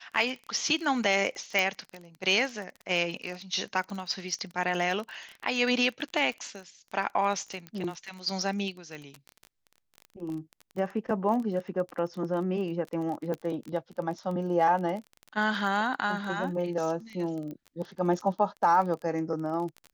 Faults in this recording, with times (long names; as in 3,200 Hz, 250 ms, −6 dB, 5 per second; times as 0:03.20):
surface crackle 25 per second −34 dBFS
0:01.59: click −13 dBFS
0:07.67: click −25 dBFS
0:13.34: click −22 dBFS
0:17.51: click −29 dBFS